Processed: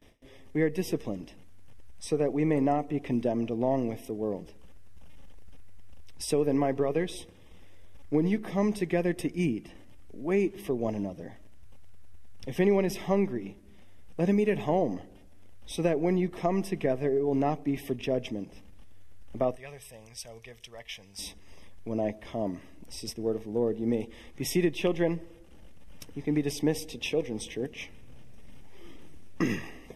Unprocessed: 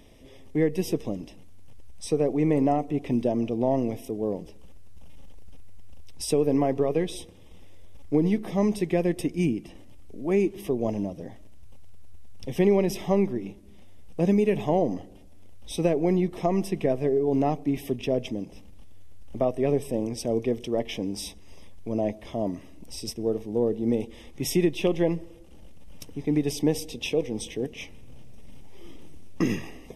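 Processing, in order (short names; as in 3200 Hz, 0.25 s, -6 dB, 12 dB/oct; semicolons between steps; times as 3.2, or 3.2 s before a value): bell 1600 Hz +7.5 dB 0.95 oct; gate with hold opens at -42 dBFS; 19.56–21.19 passive tone stack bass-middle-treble 10-0-10; gain -3.5 dB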